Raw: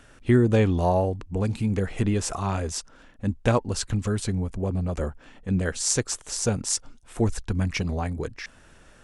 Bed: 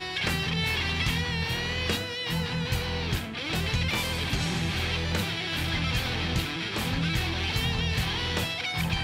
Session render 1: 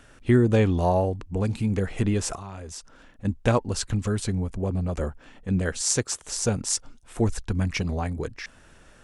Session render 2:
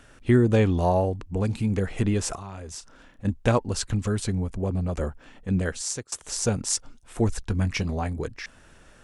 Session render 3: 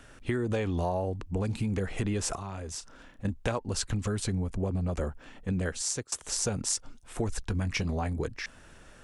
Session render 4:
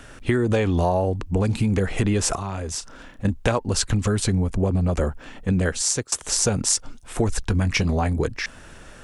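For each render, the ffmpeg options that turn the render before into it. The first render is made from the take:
-filter_complex "[0:a]asettb=1/sr,asplit=3[s0][s1][s2];[s0]atrim=end=2.354[s3];[s1]atrim=start=2.35:end=3.25,asetpts=PTS-STARTPTS,afade=t=in:d=0.004:c=qsin,afade=t=out:st=0.896:d=0.004:c=qsin,acompressor=threshold=0.0141:ratio=3:attack=3.2:release=140:knee=1:detection=peak[s4];[s2]atrim=start=3.246[s5];[s3][s4]acrossfade=d=0.004:c1=hsin:c2=qsin[s6];[s6][s5]acrossfade=d=0.004:c1=qsin:c2=hsin,asettb=1/sr,asplit=3[s7][s8][s9];[s7]atrim=end=5.814[s10];[s8]atrim=start=5.81:end=6.23,asetpts=PTS-STARTPTS,afade=t=in:d=0.004:c=qsin,afade=t=out:st=0.416:d=0.004:c=qsin,highpass=54[s11];[s9]atrim=start=6.226[s12];[s10][s11]acrossfade=d=0.004:c1=hsin:c2=qsin[s13];[s13][s12]acrossfade=d=0.004:c1=qsin:c2=hsin"
-filter_complex "[0:a]asettb=1/sr,asplit=3[s0][s1][s2];[s0]atrim=end=2.714[s3];[s1]atrim=start=2.71:end=3.3,asetpts=PTS-STARTPTS,afade=t=in:d=0.004:c=qsin,afade=t=out:st=0.586:d=0.004:c=qsin,asplit=2[s4][s5];[s5]adelay=31,volume=0.282[s6];[s4][s6]amix=inputs=2:normalize=0,atrim=end_sample=26019[s7];[s2]atrim=start=3.296[s8];[s3][s7]acrossfade=d=0.004:c1=hsin:c2=qsin[s9];[s9][s8]acrossfade=d=0.004:c1=qsin:c2=hsin,asettb=1/sr,asplit=3[s10][s11][s12];[s10]atrim=end=7.414[s13];[s11]atrim=start=7.41:end=8.14,asetpts=PTS-STARTPTS,afade=t=in:d=0.004:c=qsin,afade=t=out:st=0.726:d=0.004:c=qsin,asplit=2[s14][s15];[s15]adelay=20,volume=0.211[s16];[s14][s16]amix=inputs=2:normalize=0,atrim=end_sample=32193[s17];[s12]atrim=start=8.136[s18];[s13][s17]acrossfade=d=0.004:c1=hsin:c2=qsin[s19];[s19][s18]acrossfade=d=0.004:c1=qsin:c2=hsin,asplit=2[s20][s21];[s20]atrim=end=6.12,asetpts=PTS-STARTPTS,afade=t=out:st=5.62:d=0.5:silence=0.0749894[s22];[s21]atrim=start=6.12,asetpts=PTS-STARTPTS,afade=t=in:d=0.004:c=hsin:silence=0.0749894[s23];[s22][s23]concat=n=2:v=0:a=1"
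-filter_complex "[0:a]acrossover=split=420[s0][s1];[s0]alimiter=limit=0.0944:level=0:latency=1[s2];[s2][s1]amix=inputs=2:normalize=0,acompressor=threshold=0.0501:ratio=6"
-af "volume=2.82"

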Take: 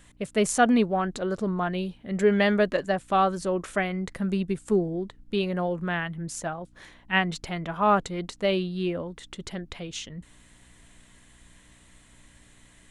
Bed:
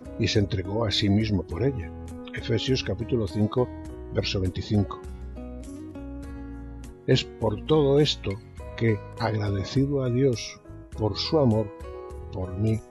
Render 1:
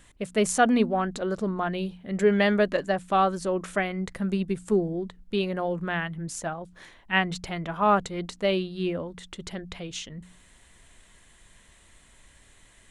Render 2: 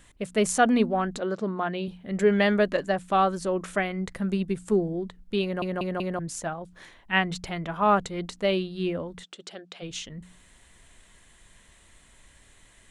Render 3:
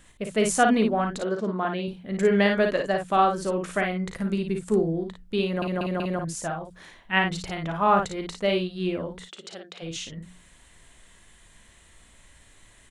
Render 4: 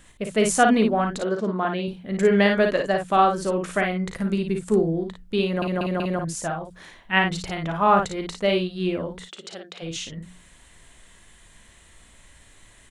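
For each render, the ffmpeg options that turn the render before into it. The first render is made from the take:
-af "bandreject=f=60:t=h:w=4,bandreject=f=120:t=h:w=4,bandreject=f=180:t=h:w=4,bandreject=f=240:t=h:w=4,bandreject=f=300:t=h:w=4"
-filter_complex "[0:a]asettb=1/sr,asplit=3[s0][s1][s2];[s0]atrim=end=1.204[s3];[s1]atrim=start=1.2:end=1.88,asetpts=PTS-STARTPTS,afade=t=in:d=0.004:c=qsin,afade=t=out:st=0.676:d=0.004:c=qsin,highpass=170,lowpass=5600[s4];[s2]atrim=start=1.876[s5];[s3][s4]acrossfade=d=0.004:c1=hsin:c2=qsin[s6];[s6][s5]acrossfade=d=0.004:c1=qsin:c2=hsin,asplit=3[s7][s8][s9];[s7]afade=t=out:st=9.23:d=0.02[s10];[s8]highpass=420,equalizer=f=980:t=q:w=4:g=-9,equalizer=f=2000:t=q:w=4:g=-8,equalizer=f=6500:t=q:w=4:g=-3,lowpass=f=8400:w=0.5412,lowpass=f=8400:w=1.3066,afade=t=in:st=9.23:d=0.02,afade=t=out:st=9.81:d=0.02[s11];[s9]afade=t=in:st=9.81:d=0.02[s12];[s10][s11][s12]amix=inputs=3:normalize=0,asplit=5[s13][s14][s15][s16][s17];[s13]atrim=end=5.622[s18];[s14]atrim=start=5.428:end=5.622[s19];[s15]atrim=start=5.428:end=5.622[s20];[s16]atrim=start=5.428:end=5.622[s21];[s17]atrim=start=6.188[s22];[s18][s19]acrossfade=d=0.004:c1=hsin:c2=hsin[s23];[s23][s20]acrossfade=d=0.004:c1=hsin:c2=hsin[s24];[s24][s21]acrossfade=d=0.004:c1=hsin:c2=hsin[s25];[s25][s22]acrossfade=d=0.004:c1=hsin:c2=hsin"
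-af "aecho=1:1:37|55:0.266|0.562"
-af "volume=1.33"

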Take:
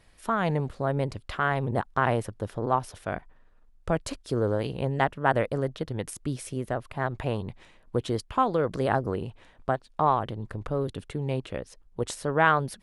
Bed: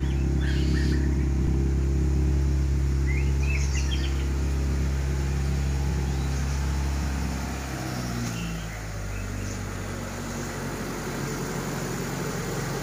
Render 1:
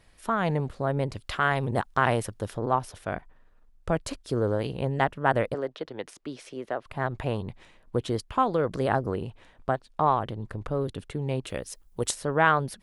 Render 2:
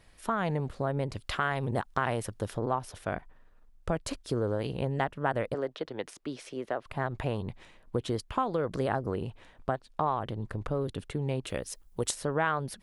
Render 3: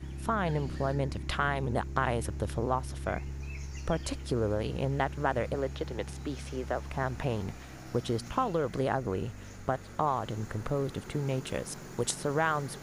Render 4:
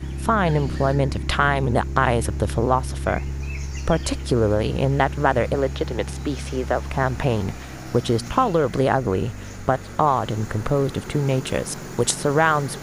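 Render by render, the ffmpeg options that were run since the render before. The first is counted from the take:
-filter_complex "[0:a]asettb=1/sr,asplit=3[s0][s1][s2];[s0]atrim=end=1.134[s3];[s1]atrim=start=1.13:end=2.57,asetpts=PTS-STARTPTS,afade=t=in:d=0.004:c=qsin,afade=t=out:st=1.436:d=0.004:c=qsin,highshelf=f=2300:g=7.5[s4];[s2]atrim=start=2.566[s5];[s3][s4]acrossfade=d=0.004:c1=hsin:c2=qsin[s6];[s6][s5]acrossfade=d=0.004:c1=qsin:c2=hsin,asettb=1/sr,asplit=3[s7][s8][s9];[s7]atrim=end=5.544[s10];[s8]atrim=start=5.54:end=6.86,asetpts=PTS-STARTPTS,afade=t=in:d=0.004:c=qsin,afade=t=out:st=1.316:d=0.004:c=qsin,acrossover=split=270 6000:gain=0.112 1 0.126[s11][s12][s13];[s11][s12][s13]amix=inputs=3:normalize=0[s14];[s9]atrim=start=6.856[s15];[s10][s14]acrossfade=d=0.004:c1=hsin:c2=qsin[s16];[s16][s15]acrossfade=d=0.004:c1=qsin:c2=hsin,asplit=3[s17][s18][s19];[s17]afade=t=out:st=11.45:d=0.02[s20];[s18]aemphasis=mode=production:type=75kf,afade=t=in:st=11.45:d=0.02,afade=t=out:st=12.1:d=0.02[s21];[s19]afade=t=in:st=12.1:d=0.02[s22];[s20][s21][s22]amix=inputs=3:normalize=0"
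-af "acompressor=threshold=0.0447:ratio=2.5"
-filter_complex "[1:a]volume=0.178[s0];[0:a][s0]amix=inputs=2:normalize=0"
-af "volume=3.35,alimiter=limit=0.708:level=0:latency=1"

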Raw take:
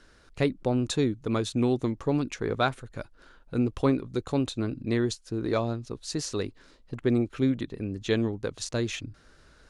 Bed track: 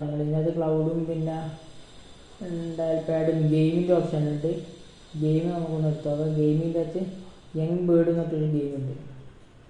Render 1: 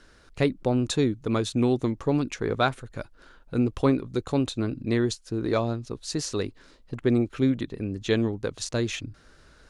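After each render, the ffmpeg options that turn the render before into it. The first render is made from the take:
-af "volume=1.26"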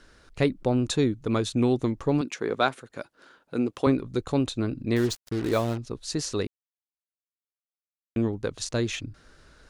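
-filter_complex "[0:a]asettb=1/sr,asplit=3[s0][s1][s2];[s0]atrim=end=2.214[s3];[s1]atrim=start=2.21:end=3.87,asetpts=PTS-STARTPTS,afade=t=in:d=0.004:c=qsin,afade=t=out:st=1.656:d=0.004:c=qsin,highpass=220[s4];[s2]atrim=start=3.866[s5];[s3][s4]acrossfade=d=0.004:c1=hsin:c2=qsin[s6];[s6][s5]acrossfade=d=0.004:c1=qsin:c2=hsin,asettb=1/sr,asplit=3[s7][s8][s9];[s7]atrim=end=4.964[s10];[s8]atrim=start=4.96:end=5.78,asetpts=PTS-STARTPTS,afade=t=in:d=0.004:c=qsin,afade=t=out:st=0.816:d=0.004:c=qsin,acrusher=bits=5:mix=0:aa=0.5[s11];[s9]atrim=start=5.776[s12];[s10][s11]acrossfade=d=0.004:c1=hsin:c2=qsin[s13];[s13][s12]acrossfade=d=0.004:c1=qsin:c2=hsin,asplit=3[s14][s15][s16];[s14]atrim=end=6.47,asetpts=PTS-STARTPTS,afade=t=out:st=6.466:d=0.004:c=hsin[s17];[s15]atrim=start=6.47:end=8.16,asetpts=PTS-STARTPTS,volume=0[s18];[s16]atrim=start=8.16,asetpts=PTS-STARTPTS,afade=t=in:d=0.004:c=hsin[s19];[s17][s18][s19]concat=n=3:v=0:a=1"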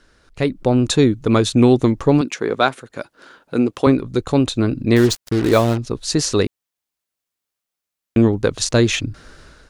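-af "dynaudnorm=f=210:g=5:m=4.47"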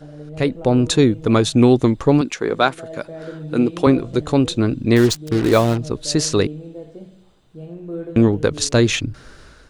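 -filter_complex "[1:a]volume=0.355[s0];[0:a][s0]amix=inputs=2:normalize=0"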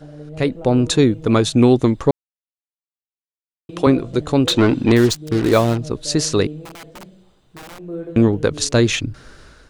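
-filter_complex "[0:a]asettb=1/sr,asplit=3[s0][s1][s2];[s0]atrim=end=4.474[s3];[s1]atrim=start=4.47:end=4.92,asetpts=PTS-STARTPTS,afade=t=in:d=0.004:c=qsin,afade=t=out:st=0.446:d=0.004:c=qsin,asplit=2[s4][s5];[s5]highpass=f=720:p=1,volume=12.6,asoftclip=type=tanh:threshold=0.668[s6];[s4][s6]amix=inputs=2:normalize=0,lowpass=f=2900:p=1,volume=0.501[s7];[s2]atrim=start=4.916[s8];[s3][s7]acrossfade=d=0.004:c1=hsin:c2=qsin[s9];[s9][s8]acrossfade=d=0.004:c1=qsin:c2=hsin,asettb=1/sr,asplit=3[s10][s11][s12];[s10]atrim=end=6.654[s13];[s11]atrim=start=6.65:end=7.79,asetpts=PTS-STARTPTS,afade=t=in:d=0.004:c=qsin,afade=t=out:st=1.136:d=0.004:c=qsin,aeval=exprs='(mod(39.8*val(0)+1,2)-1)/39.8':c=same[s14];[s12]atrim=start=7.786[s15];[s13][s14]acrossfade=d=0.004:c1=hsin:c2=qsin[s16];[s16][s15]acrossfade=d=0.004:c1=qsin:c2=hsin,asplit=3[s17][s18][s19];[s17]atrim=end=2.11,asetpts=PTS-STARTPTS,afade=t=out:st=2.106:d=0.004:c=hsin[s20];[s18]atrim=start=2.11:end=3.69,asetpts=PTS-STARTPTS,volume=0[s21];[s19]atrim=start=3.69,asetpts=PTS-STARTPTS,afade=t=in:d=0.004:c=hsin[s22];[s20][s21][s22]concat=n=3:v=0:a=1"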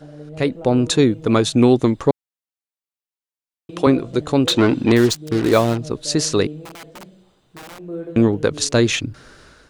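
-af "lowshelf=f=70:g=-10"

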